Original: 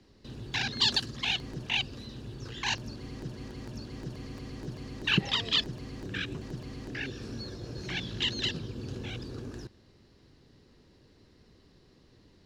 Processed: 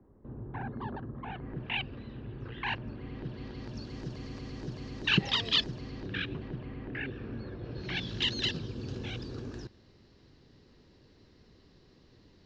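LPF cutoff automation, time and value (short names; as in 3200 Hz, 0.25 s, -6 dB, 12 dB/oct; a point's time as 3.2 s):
LPF 24 dB/oct
1.21 s 1200 Hz
1.66 s 2600 Hz
2.94 s 2600 Hz
3.89 s 6400 Hz
5.66 s 6400 Hz
6.74 s 2600 Hz
7.56 s 2600 Hz
8.1 s 6400 Hz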